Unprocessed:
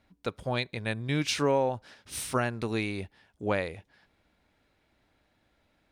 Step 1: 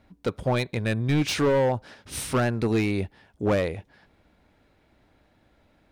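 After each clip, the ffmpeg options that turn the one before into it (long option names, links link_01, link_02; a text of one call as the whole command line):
ffmpeg -i in.wav -af "asoftclip=type=hard:threshold=-26.5dB,tiltshelf=frequency=1300:gain=3.5,volume=6dB" out.wav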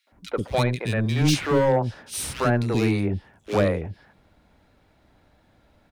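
ffmpeg -i in.wav -filter_complex "[0:a]acrossover=split=360|2300[link_01][link_02][link_03];[link_02]adelay=70[link_04];[link_01]adelay=120[link_05];[link_05][link_04][link_03]amix=inputs=3:normalize=0,volume=3.5dB" out.wav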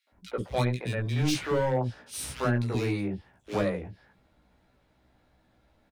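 ffmpeg -i in.wav -filter_complex "[0:a]asplit=2[link_01][link_02];[link_02]adelay=16,volume=-4dB[link_03];[link_01][link_03]amix=inputs=2:normalize=0,volume=-7.5dB" out.wav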